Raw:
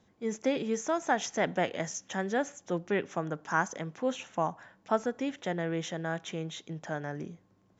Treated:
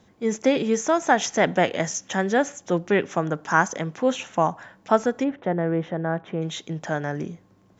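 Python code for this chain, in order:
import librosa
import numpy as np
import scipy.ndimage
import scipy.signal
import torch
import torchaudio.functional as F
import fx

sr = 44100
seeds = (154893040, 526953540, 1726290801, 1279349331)

y = fx.lowpass(x, sr, hz=1300.0, slope=12, at=(5.23, 6.41), fade=0.02)
y = F.gain(torch.from_numpy(y), 9.0).numpy()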